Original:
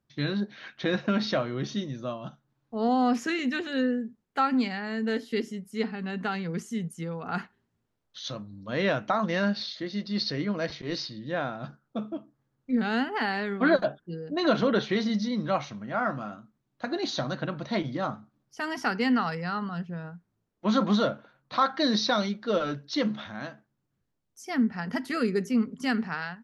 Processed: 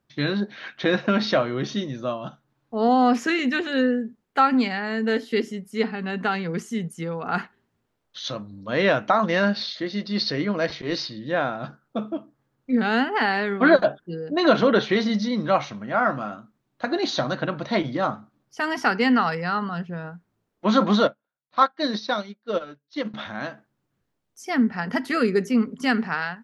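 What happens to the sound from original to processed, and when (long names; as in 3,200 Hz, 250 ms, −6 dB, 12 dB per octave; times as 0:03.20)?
0:21.07–0:23.14: expander for the loud parts 2.5 to 1, over −43 dBFS
whole clip: bass and treble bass −5 dB, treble −4 dB; level +7 dB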